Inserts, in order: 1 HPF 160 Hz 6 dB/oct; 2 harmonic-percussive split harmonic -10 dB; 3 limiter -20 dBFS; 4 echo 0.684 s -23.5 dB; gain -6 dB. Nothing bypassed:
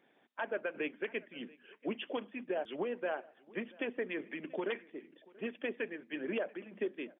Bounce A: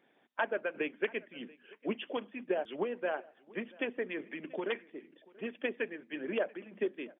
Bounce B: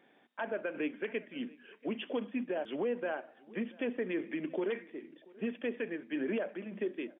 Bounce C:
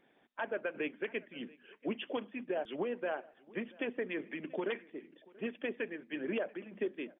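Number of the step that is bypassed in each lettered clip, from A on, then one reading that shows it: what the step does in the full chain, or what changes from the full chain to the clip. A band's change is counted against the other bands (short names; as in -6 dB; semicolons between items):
3, crest factor change +5.0 dB; 2, 250 Hz band +4.5 dB; 1, 125 Hz band +2.0 dB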